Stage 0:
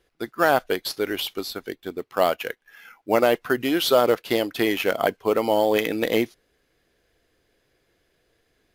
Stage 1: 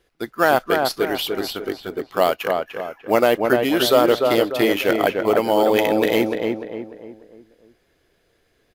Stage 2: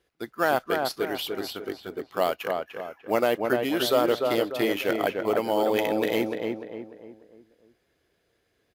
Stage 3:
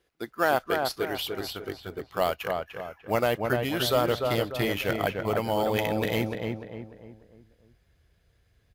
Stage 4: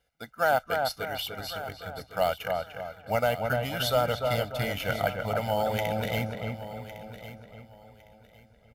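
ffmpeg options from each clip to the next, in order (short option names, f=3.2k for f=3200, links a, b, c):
-filter_complex "[0:a]asplit=2[a][b];[b]adelay=297,lowpass=f=1.8k:p=1,volume=-3.5dB,asplit=2[c][d];[d]adelay=297,lowpass=f=1.8k:p=1,volume=0.43,asplit=2[e][f];[f]adelay=297,lowpass=f=1.8k:p=1,volume=0.43,asplit=2[g][h];[h]adelay=297,lowpass=f=1.8k:p=1,volume=0.43,asplit=2[i][j];[j]adelay=297,lowpass=f=1.8k:p=1,volume=0.43[k];[a][c][e][g][i][k]amix=inputs=6:normalize=0,volume=2.5dB"
-af "highpass=50,volume=-7dB"
-af "asubboost=boost=11:cutoff=100"
-af "aecho=1:1:1.4:0.87,aecho=1:1:1107|2214|3321:0.2|0.0479|0.0115,volume=-4dB"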